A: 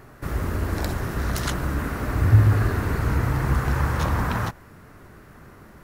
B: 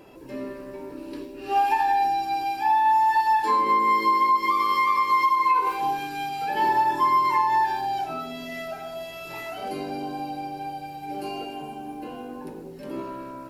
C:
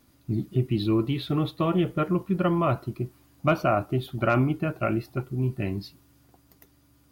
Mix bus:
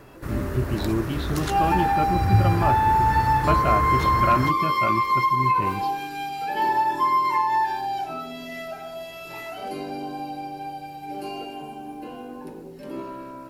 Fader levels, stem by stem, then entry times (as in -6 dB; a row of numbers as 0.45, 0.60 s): -3.5, -0.5, -2.0 dB; 0.00, 0.00, 0.00 s